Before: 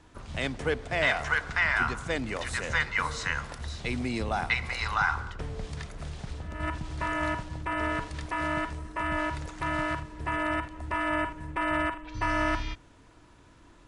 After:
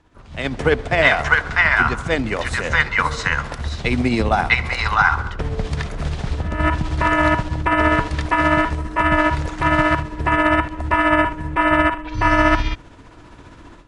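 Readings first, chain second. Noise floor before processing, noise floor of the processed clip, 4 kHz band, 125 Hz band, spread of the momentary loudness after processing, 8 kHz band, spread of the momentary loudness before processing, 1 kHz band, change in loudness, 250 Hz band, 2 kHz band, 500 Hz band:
−56 dBFS, −43 dBFS, +9.5 dB, +12.5 dB, 10 LU, +6.0 dB, 12 LU, +12.5 dB, +12.0 dB, +13.0 dB, +11.0 dB, +12.5 dB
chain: amplitude tremolo 15 Hz, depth 40%
low-pass filter 4,000 Hz 6 dB per octave
automatic gain control gain up to 16.5 dB

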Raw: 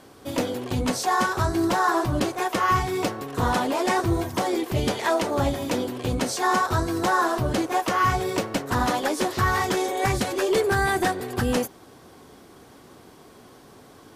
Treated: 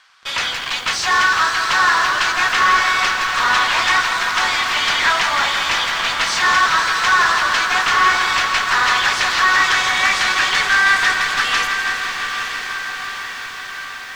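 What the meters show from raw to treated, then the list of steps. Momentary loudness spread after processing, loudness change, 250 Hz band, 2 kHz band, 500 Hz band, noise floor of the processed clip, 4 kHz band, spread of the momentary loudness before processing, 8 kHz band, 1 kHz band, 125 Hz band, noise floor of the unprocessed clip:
10 LU, +8.5 dB, −12.0 dB, +15.5 dB, −7.5 dB, −30 dBFS, +16.0 dB, 5 LU, +8.5 dB, +7.5 dB, −12.5 dB, −50 dBFS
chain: high-pass filter 1,300 Hz 24 dB per octave
high-shelf EQ 5,900 Hz +6 dB
in parallel at −10 dB: fuzz pedal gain 47 dB, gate −45 dBFS
on the sum: high-frequency loss of the air 160 metres
on a send: feedback delay with all-pass diffusion 914 ms, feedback 64%, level −8 dB
on the sum: feedback echo at a low word length 165 ms, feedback 80%, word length 8 bits, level −9.5 dB
level +7 dB

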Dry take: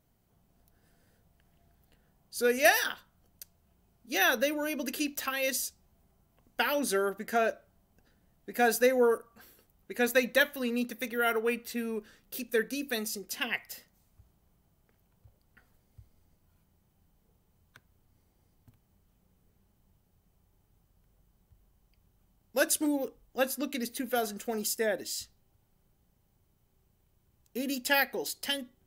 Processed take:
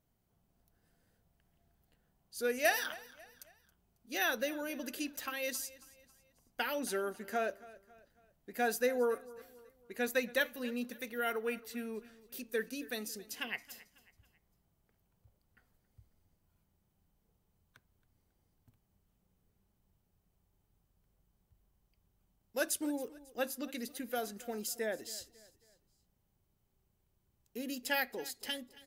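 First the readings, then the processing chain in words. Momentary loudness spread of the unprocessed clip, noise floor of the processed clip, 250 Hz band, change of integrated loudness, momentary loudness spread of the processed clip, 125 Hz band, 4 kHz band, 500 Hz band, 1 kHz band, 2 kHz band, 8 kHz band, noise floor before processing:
13 LU, −78 dBFS, −7.0 dB, −7.0 dB, 16 LU, can't be measured, −7.0 dB, −7.0 dB, −7.0 dB, −7.0 dB, −7.0 dB, −71 dBFS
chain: repeating echo 273 ms, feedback 42%, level −20 dB
level −7 dB

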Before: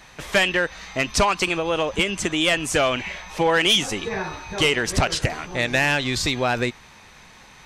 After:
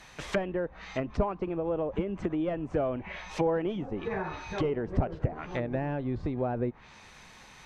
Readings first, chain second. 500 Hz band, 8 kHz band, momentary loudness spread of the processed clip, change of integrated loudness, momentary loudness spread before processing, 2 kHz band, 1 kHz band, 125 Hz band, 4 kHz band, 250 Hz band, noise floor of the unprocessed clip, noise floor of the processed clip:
−6.5 dB, below −25 dB, 7 LU, −10.5 dB, 8 LU, −19.5 dB, −11.5 dB, −4.5 dB, −26.5 dB, −4.5 dB, −48 dBFS, −53 dBFS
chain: treble cut that deepens with the level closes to 590 Hz, closed at −20 dBFS
level −4.5 dB

